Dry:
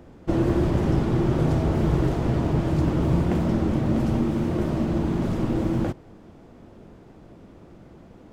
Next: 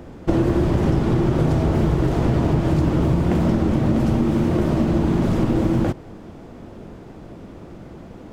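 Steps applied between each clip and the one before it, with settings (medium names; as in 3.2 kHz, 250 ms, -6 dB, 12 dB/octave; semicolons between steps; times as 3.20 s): compression, threshold -23 dBFS, peak gain reduction 8 dB; trim +8.5 dB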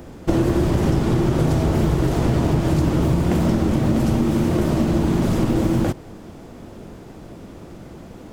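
treble shelf 5.1 kHz +11 dB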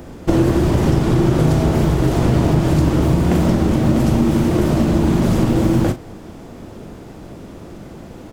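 doubling 39 ms -11 dB; trim +3 dB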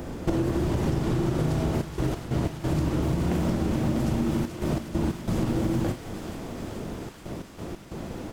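compression 4:1, threshold -24 dBFS, peak gain reduction 12 dB; trance gate "xxxxxxxxxxx.x.x." 91 bpm -12 dB; feedback echo behind a high-pass 432 ms, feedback 76%, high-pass 1.4 kHz, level -7.5 dB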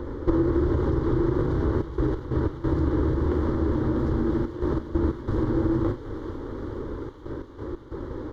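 comb filter that takes the minimum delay 0.3 ms; distance through air 320 m; static phaser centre 690 Hz, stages 6; trim +6.5 dB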